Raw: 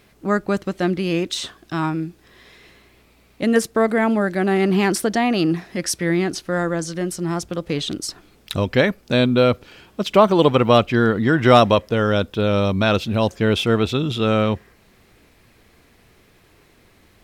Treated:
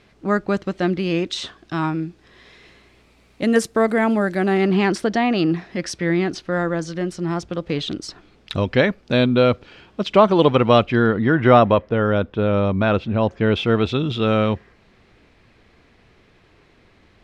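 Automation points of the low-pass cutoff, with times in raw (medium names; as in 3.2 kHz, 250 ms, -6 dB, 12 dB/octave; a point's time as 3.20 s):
2.03 s 5.5 kHz
3.81 s 11 kHz
4.34 s 11 kHz
4.75 s 4.6 kHz
10.73 s 4.6 kHz
11.57 s 2.1 kHz
13.23 s 2.1 kHz
13.84 s 4.4 kHz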